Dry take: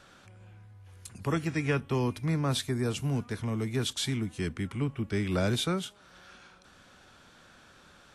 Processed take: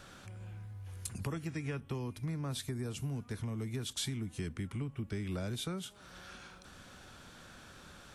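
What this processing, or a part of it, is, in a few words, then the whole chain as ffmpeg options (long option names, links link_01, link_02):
ASMR close-microphone chain: -af "lowshelf=frequency=210:gain=6,acompressor=threshold=-37dB:ratio=6,highshelf=frequency=8500:gain=8,volume=1dB"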